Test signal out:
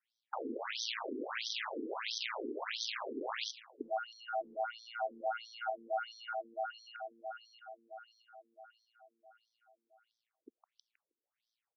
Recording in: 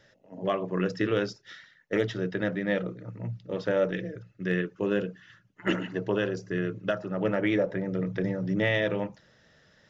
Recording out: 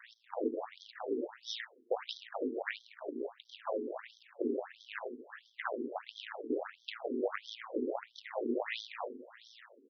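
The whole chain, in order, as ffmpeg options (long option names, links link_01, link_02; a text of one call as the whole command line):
ffmpeg -i in.wav -filter_complex "[0:a]highpass=frequency=49:width=0.5412,highpass=frequency=49:width=1.3066,aeval=exprs='val(0)*sin(2*PI*57*n/s)':channel_layout=same,aeval=exprs='max(val(0),0)':channel_layout=same,acrossover=split=150[link_01][link_02];[link_02]acompressor=threshold=-44dB:ratio=8[link_03];[link_01][link_03]amix=inputs=2:normalize=0,aecho=1:1:158|316|474|632:0.15|0.0703|0.0331|0.0155,asplit=2[link_04][link_05];[link_05]aeval=exprs='clip(val(0),-1,0.0112)':channel_layout=same,volume=-4dB[link_06];[link_04][link_06]amix=inputs=2:normalize=0,afftfilt=real='re*between(b*sr/1024,320*pow(4500/320,0.5+0.5*sin(2*PI*1.5*pts/sr))/1.41,320*pow(4500/320,0.5+0.5*sin(2*PI*1.5*pts/sr))*1.41)':imag='im*between(b*sr/1024,320*pow(4500/320,0.5+0.5*sin(2*PI*1.5*pts/sr))/1.41,320*pow(4500/320,0.5+0.5*sin(2*PI*1.5*pts/sr))*1.41)':win_size=1024:overlap=0.75,volume=14dB" out.wav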